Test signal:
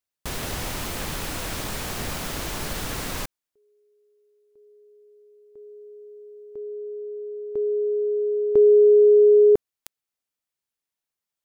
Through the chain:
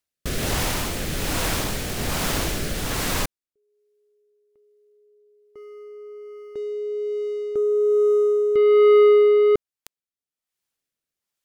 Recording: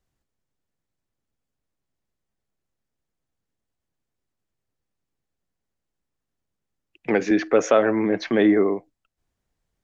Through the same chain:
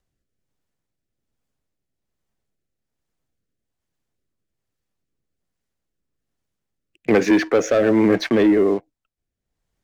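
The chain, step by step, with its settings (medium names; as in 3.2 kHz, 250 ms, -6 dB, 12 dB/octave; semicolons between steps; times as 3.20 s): upward compressor 1.5:1, threshold -53 dBFS; waveshaping leveller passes 2; rotary cabinet horn 1.2 Hz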